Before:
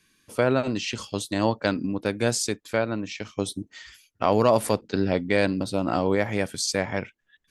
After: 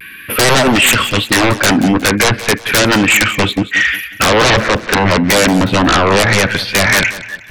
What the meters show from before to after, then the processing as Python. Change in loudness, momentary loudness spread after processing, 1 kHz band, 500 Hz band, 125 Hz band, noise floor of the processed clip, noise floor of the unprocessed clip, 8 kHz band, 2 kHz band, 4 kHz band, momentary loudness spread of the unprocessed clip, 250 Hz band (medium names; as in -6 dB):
+14.0 dB, 5 LU, +14.5 dB, +9.0 dB, +13.5 dB, -33 dBFS, -70 dBFS, +16.0 dB, +20.5 dB, +19.5 dB, 10 LU, +12.5 dB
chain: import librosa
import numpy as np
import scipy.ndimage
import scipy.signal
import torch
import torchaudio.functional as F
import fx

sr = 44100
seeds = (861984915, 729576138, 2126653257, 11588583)

y = scipy.signal.sosfilt(scipy.signal.butter(2, 41.0, 'highpass', fs=sr, output='sos'), x)
y = fx.env_lowpass_down(y, sr, base_hz=1200.0, full_db=-20.0)
y = fx.curve_eq(y, sr, hz=(590.0, 900.0, 1500.0, 2600.0, 7200.0, 12000.0), db=(0, -3, 14, 14, -26, 13))
y = fx.rider(y, sr, range_db=4, speed_s=2.0)
y = fx.fold_sine(y, sr, drive_db=17, ceiling_db=-6.5)
y = fx.vibrato(y, sr, rate_hz=0.32, depth_cents=19.0)
y = fx.echo_feedback(y, sr, ms=181, feedback_pct=37, wet_db=-15)